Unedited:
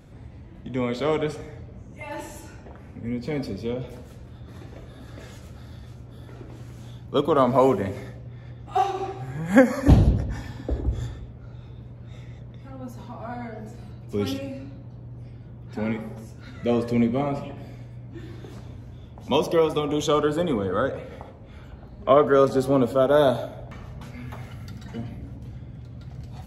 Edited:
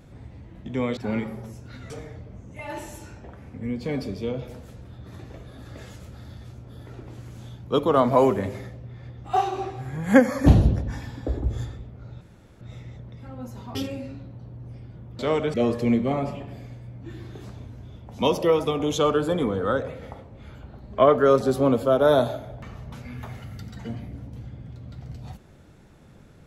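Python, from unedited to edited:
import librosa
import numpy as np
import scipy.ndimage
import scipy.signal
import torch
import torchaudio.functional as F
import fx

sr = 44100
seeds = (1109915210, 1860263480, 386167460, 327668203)

y = fx.edit(x, sr, fx.swap(start_s=0.97, length_s=0.35, other_s=15.7, other_length_s=0.93),
    fx.room_tone_fill(start_s=11.63, length_s=0.4),
    fx.cut(start_s=13.17, length_s=1.09), tone=tone)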